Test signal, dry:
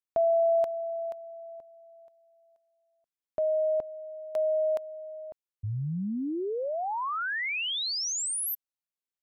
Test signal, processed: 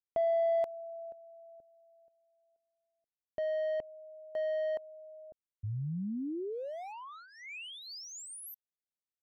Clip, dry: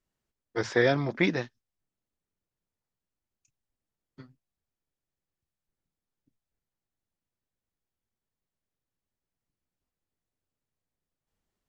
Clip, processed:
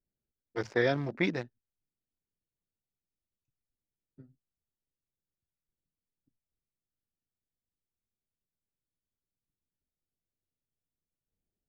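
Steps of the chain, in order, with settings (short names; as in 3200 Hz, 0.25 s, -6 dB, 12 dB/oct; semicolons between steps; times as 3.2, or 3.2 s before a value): Wiener smoothing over 41 samples; gain -4 dB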